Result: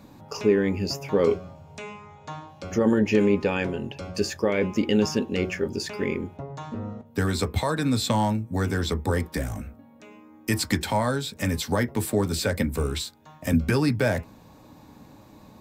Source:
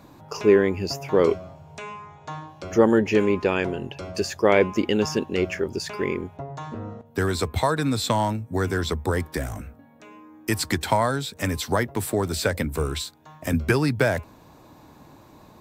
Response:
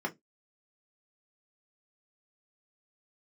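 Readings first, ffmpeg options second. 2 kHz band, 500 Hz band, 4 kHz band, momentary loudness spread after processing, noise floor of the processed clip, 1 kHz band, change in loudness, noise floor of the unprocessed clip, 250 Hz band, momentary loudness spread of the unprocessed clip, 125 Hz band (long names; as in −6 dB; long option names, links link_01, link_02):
−3.0 dB, −3.0 dB, −0.5 dB, 15 LU, −51 dBFS, −4.0 dB, −2.0 dB, −51 dBFS, +0.5 dB, 17 LU, +0.5 dB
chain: -filter_complex "[0:a]alimiter=limit=-11.5dB:level=0:latency=1:release=24,asplit=2[link_01][link_02];[1:a]atrim=start_sample=2205[link_03];[link_02][link_03]afir=irnorm=-1:irlink=0,volume=-13dB[link_04];[link_01][link_04]amix=inputs=2:normalize=0"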